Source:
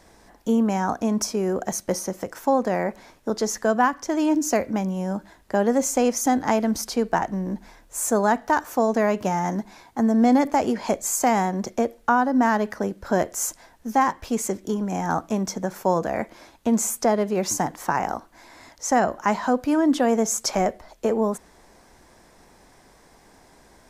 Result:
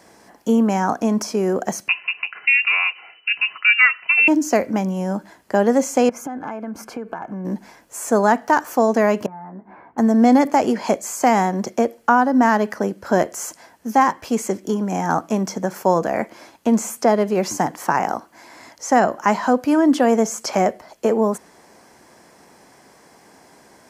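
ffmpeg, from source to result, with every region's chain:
ffmpeg -i in.wav -filter_complex "[0:a]asettb=1/sr,asplit=3[link_01][link_02][link_03];[link_01]atrim=end=1.884[link_04];[link_02]atrim=start=1.88:end=4.28,asetpts=PTS-STARTPTS,afade=type=in:duration=0.004:curve=qsin,afade=type=out:start_time=2.396:duration=0.004:curve=qsin,aecho=1:1:3.1:0.4,atrim=end_sample=105840,lowpass=frequency=2600:width_type=q:width=0.5098,lowpass=frequency=2600:width_type=q:width=0.6013,lowpass=frequency=2600:width_type=q:width=0.9,lowpass=frequency=2600:width_type=q:width=2.563,afreqshift=-3000[link_05];[link_03]atrim=start=4.276[link_06];[link_04][link_05]acrossfade=duration=0.004:curve1=hsin:curve2=qsin[link_07];[link_07][link_06]acrossfade=duration=0.004:curve1=qsin:curve2=hsin,asettb=1/sr,asplit=3[link_08][link_09][link_10];[link_08]atrim=end=6.094[link_11];[link_09]atrim=start=6.09:end=7.45,asetpts=PTS-STARTPTS,afade=type=in:duration=0.004:curve=qsin,afade=type=out:start_time=1.356:duration=0.004:curve=qsin,highshelf=frequency=2800:width_type=q:width=1.5:gain=-13,acompressor=threshold=-29dB:ratio=12:attack=3.2:release=140:knee=1:detection=peak,asuperstop=centerf=1900:order=12:qfactor=7.4[link_12];[link_10]atrim=start=7.446[link_13];[link_11][link_12]acrossfade=duration=0.004:curve1=hsin:curve2=qsin[link_14];[link_14][link_13]acrossfade=duration=0.004:curve1=qsin:curve2=hsin,asettb=1/sr,asplit=3[link_15][link_16][link_17];[link_15]atrim=end=9.264[link_18];[link_16]atrim=start=9.26:end=9.98,asetpts=PTS-STARTPTS,afade=type=in:duration=0.004:curve=qsin,afade=type=out:start_time=0.716:duration=0.004:curve=qsin,lowpass=frequency=1700:width=0.5412,lowpass=frequency=1700:width=1.3066,acompressor=threshold=-41dB:ratio=6:attack=3.2:release=140:knee=1:detection=peak,asplit=2[link_19][link_20];[link_20]adelay=16,volume=-4.5dB[link_21];[link_19][link_21]amix=inputs=2:normalize=0,atrim=end_sample=31752[link_22];[link_17]atrim=start=9.976[link_23];[link_18][link_22]acrossfade=duration=0.004:curve1=hsin:curve2=qsin[link_24];[link_24][link_23]acrossfade=duration=0.004:curve1=qsin:curve2=hsin,acrossover=split=4300[link_25][link_26];[link_26]acompressor=threshold=-33dB:ratio=4:attack=1:release=60[link_27];[link_25][link_27]amix=inputs=2:normalize=0,highpass=140,bandreject=frequency=3700:width=9.6,volume=4.5dB" out.wav

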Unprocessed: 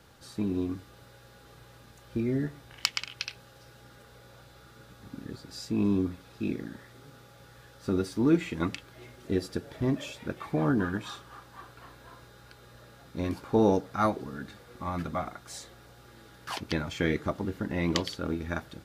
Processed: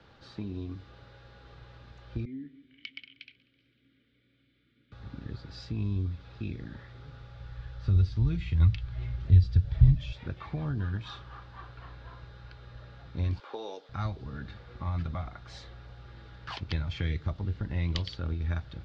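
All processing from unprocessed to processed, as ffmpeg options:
ffmpeg -i in.wav -filter_complex "[0:a]asettb=1/sr,asplit=3[link_01][link_02][link_03];[link_01]atrim=end=2.254[link_04];[link_02]atrim=start=2.25:end=4.92,asetpts=PTS-STARTPTS,afade=type=in:duration=0.004:curve=qsin,afade=type=out:start_time=2.666:duration=0.004:curve=qsin,asplit=3[link_05][link_06][link_07];[link_05]bandpass=frequency=270:width_type=q:width=8,volume=0dB[link_08];[link_06]bandpass=frequency=2290:width_type=q:width=8,volume=-6dB[link_09];[link_07]bandpass=frequency=3010:width_type=q:width=8,volume=-9dB[link_10];[link_08][link_09][link_10]amix=inputs=3:normalize=0,aecho=1:1:189|378|567|756:0.0708|0.0396|0.0222|0.0124,atrim=end_sample=117747[link_11];[link_03]atrim=start=4.916[link_12];[link_04][link_11]acrossfade=duration=0.004:curve1=hsin:curve2=qsin[link_13];[link_13][link_12]acrossfade=duration=0.004:curve1=qsin:curve2=hsin,asettb=1/sr,asplit=3[link_14][link_15][link_16];[link_14]atrim=end=6.864[link_17];[link_15]atrim=start=6.86:end=10.12,asetpts=PTS-STARTPTS,afade=type=in:duration=0.004:curve=qsin,afade=type=out:start_time=3.256:duration=0.004:curve=qsin,acrossover=split=6200[link_18][link_19];[link_19]acompressor=threshold=-55dB:ratio=4:attack=1:release=60[link_20];[link_18][link_20]amix=inputs=2:normalize=0,asubboost=boost=9.5:cutoff=130[link_21];[link_16]atrim=start=10.116[link_22];[link_17][link_21]acrossfade=duration=0.004:curve1=hsin:curve2=qsin[link_23];[link_23][link_22]acrossfade=duration=0.004:curve1=qsin:curve2=hsin,asettb=1/sr,asplit=3[link_24][link_25][link_26];[link_24]atrim=end=13.394[link_27];[link_25]atrim=start=13.39:end=13.89,asetpts=PTS-STARTPTS,afade=type=in:duration=0.004:curve=qsin,afade=type=out:start_time=0.496:duration=0.004:curve=qsin,highpass=frequency=380:width=0.5412,highpass=frequency=380:width=1.3066,equalizer=frequency=3300:width_type=o:width=0.3:gain=4.5[link_28];[link_26]atrim=start=13.886[link_29];[link_27][link_28]acrossfade=duration=0.004:curve1=hsin:curve2=qsin[link_30];[link_30][link_29]acrossfade=duration=0.004:curve1=qsin:curve2=hsin,lowpass=frequency=4400:width=0.5412,lowpass=frequency=4400:width=1.3066,asubboost=boost=5:cutoff=110,acrossover=split=130|3000[link_31][link_32][link_33];[link_32]acompressor=threshold=-38dB:ratio=6[link_34];[link_31][link_34][link_33]amix=inputs=3:normalize=0" out.wav

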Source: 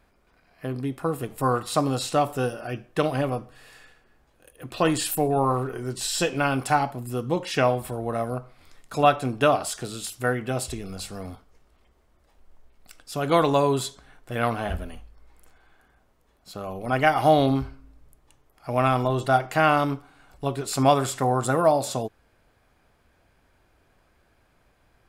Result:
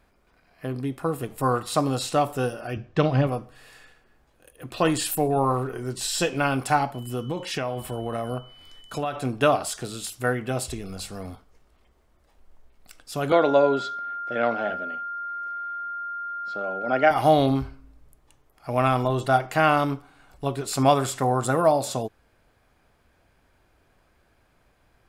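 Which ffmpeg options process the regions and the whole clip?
ffmpeg -i in.wav -filter_complex "[0:a]asettb=1/sr,asplit=3[link_01][link_02][link_03];[link_01]atrim=end=2.764[link_04];[link_02]atrim=start=2.76:end=3.27,asetpts=PTS-STARTPTS,afade=type=in:duration=0.004:curve=qsin,afade=type=out:start_time=0.506:duration=0.004:curve=qsin,lowpass=frequency=6200:width=0.5412,lowpass=frequency=6200:width=1.3066,equalizer=frequency=88:width_type=o:width=2:gain=11.5[link_05];[link_03]atrim=start=3.266[link_06];[link_04][link_05]acrossfade=duration=0.004:curve1=hsin:curve2=qsin[link_07];[link_07][link_06]acrossfade=duration=0.004:curve1=qsin:curve2=hsin,asettb=1/sr,asplit=3[link_08][link_09][link_10];[link_08]atrim=end=6.944[link_11];[link_09]atrim=start=6.94:end=9.16,asetpts=PTS-STARTPTS,afade=type=in:duration=0.004:curve=qsin,afade=type=out:start_time=2.216:duration=0.004:curve=qsin,aeval=exprs='val(0)+0.00355*sin(2*PI*3000*n/s)':channel_layout=same,acompressor=threshold=-23dB:ratio=12:attack=3.2:release=140:knee=1:detection=peak[link_12];[link_10]atrim=start=9.156[link_13];[link_11][link_12]acrossfade=duration=0.004:curve1=hsin:curve2=qsin[link_14];[link_14][link_13]acrossfade=duration=0.004:curve1=qsin:curve2=hsin,asettb=1/sr,asplit=3[link_15][link_16][link_17];[link_15]atrim=end=13.324[link_18];[link_16]atrim=start=13.32:end=17.11,asetpts=PTS-STARTPTS,afade=type=in:duration=0.004:curve=qsin,afade=type=out:start_time=3.786:duration=0.004:curve=qsin,aeval=exprs='val(0)+0.0398*sin(2*PI*1400*n/s)':channel_layout=same,highpass=frequency=170:width=0.5412,highpass=frequency=170:width=1.3066,equalizer=frequency=170:width_type=q:width=4:gain=-7,equalizer=frequency=580:width_type=q:width=4:gain=6,equalizer=frequency=1100:width_type=q:width=4:gain=-7,equalizer=frequency=2800:width_type=q:width=4:gain=-5,equalizer=frequency=4100:width_type=q:width=4:gain=-5,lowpass=frequency=5000:width=0.5412,lowpass=frequency=5000:width=1.3066[link_19];[link_17]atrim=start=17.106[link_20];[link_18][link_19]acrossfade=duration=0.004:curve1=hsin:curve2=qsin[link_21];[link_21][link_20]acrossfade=duration=0.004:curve1=qsin:curve2=hsin" out.wav

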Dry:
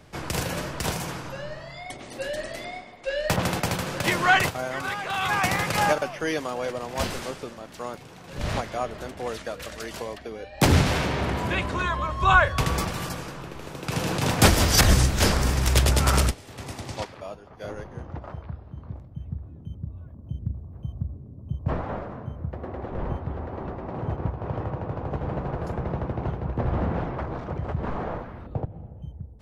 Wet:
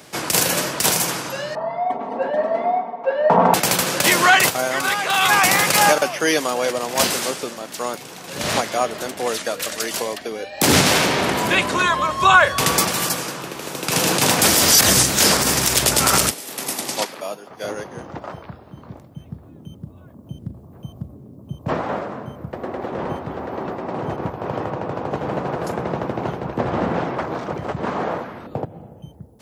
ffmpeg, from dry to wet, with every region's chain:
ffmpeg -i in.wav -filter_complex "[0:a]asettb=1/sr,asplit=3[link_01][link_02][link_03];[link_01]atrim=end=1.554[link_04];[link_02]atrim=start=1.55:end=3.54,asetpts=PTS-STARTPTS,afade=type=in:duration=0.004:curve=qsin,afade=type=out:start_time=1.986:duration=0.004:curve=qsin,lowpass=frequency=900:width_type=q:width=3.1,aecho=1:1:4.4:0.96,atrim=end_sample=87759[link_05];[link_03]atrim=start=3.536[link_06];[link_04][link_05]acrossfade=duration=0.004:curve1=hsin:curve2=qsin[link_07];[link_07][link_06]acrossfade=duration=0.004:curve1=qsin:curve2=hsin,asettb=1/sr,asplit=3[link_08][link_09][link_10];[link_08]atrim=end=16.314[link_11];[link_09]atrim=start=16.31:end=17.48,asetpts=PTS-STARTPTS,afade=type=in:duration=0.004:curve=qsin,afade=type=out:start_time=1.166:duration=0.004:curve=qsin,highpass=frequency=150:width=0.5412,highpass=frequency=150:width=1.3066,equalizer=frequency=12000:width=1.8:gain=9[link_12];[link_10]atrim=start=17.476[link_13];[link_11][link_12]acrossfade=duration=0.004:curve1=hsin:curve2=qsin[link_14];[link_14][link_13]acrossfade=duration=0.004:curve1=qsin:curve2=hsin,highpass=200,highshelf=frequency=4600:gain=12,alimiter=level_in=10.5dB:limit=-1dB:release=50:level=0:latency=1,volume=-2.5dB" out.wav

